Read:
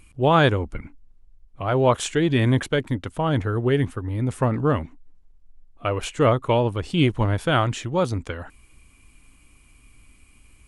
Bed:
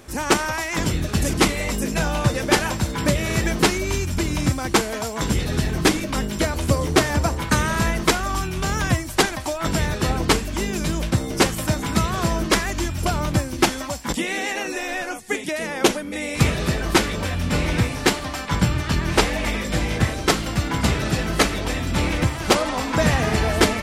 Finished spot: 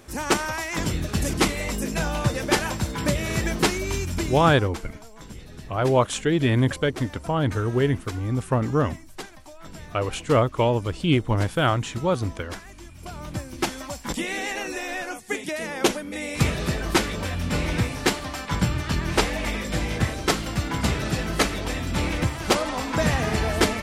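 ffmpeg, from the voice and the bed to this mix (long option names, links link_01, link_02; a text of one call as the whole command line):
ffmpeg -i stem1.wav -i stem2.wav -filter_complex "[0:a]adelay=4100,volume=-1dB[link_01];[1:a]volume=12.5dB,afade=type=out:start_time=4.19:duration=0.53:silence=0.158489,afade=type=in:start_time=12.94:duration=1.31:silence=0.158489[link_02];[link_01][link_02]amix=inputs=2:normalize=0" out.wav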